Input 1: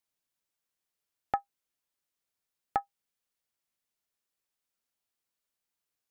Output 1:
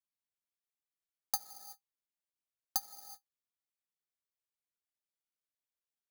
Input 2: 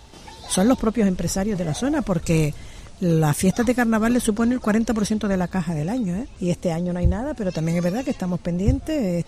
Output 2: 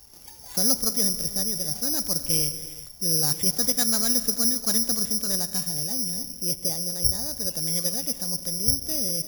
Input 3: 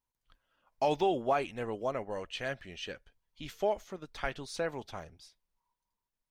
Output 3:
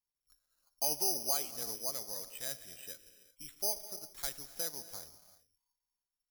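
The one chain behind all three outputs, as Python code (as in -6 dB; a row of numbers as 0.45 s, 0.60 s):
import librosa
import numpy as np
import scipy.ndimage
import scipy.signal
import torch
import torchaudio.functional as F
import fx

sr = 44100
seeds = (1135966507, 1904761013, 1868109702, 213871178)

y = fx.high_shelf(x, sr, hz=3800.0, db=6.5)
y = fx.rev_gated(y, sr, seeds[0], gate_ms=410, shape='flat', drr_db=11.5)
y = (np.kron(scipy.signal.resample_poly(y, 1, 8), np.eye(8)[0]) * 8)[:len(y)]
y = y * 10.0 ** (-13.5 / 20.0)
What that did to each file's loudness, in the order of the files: -2.5 LU, -0.5 LU, -1.0 LU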